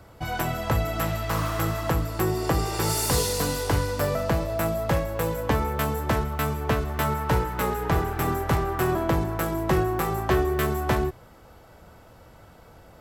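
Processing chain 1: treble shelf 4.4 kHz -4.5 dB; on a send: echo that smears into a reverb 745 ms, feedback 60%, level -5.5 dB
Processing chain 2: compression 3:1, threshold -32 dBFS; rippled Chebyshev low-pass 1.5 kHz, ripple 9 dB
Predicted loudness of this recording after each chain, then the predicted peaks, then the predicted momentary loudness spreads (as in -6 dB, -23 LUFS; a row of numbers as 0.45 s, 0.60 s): -25.5 LUFS, -39.0 LUFS; -7.5 dBFS, -22.5 dBFS; 7 LU, 21 LU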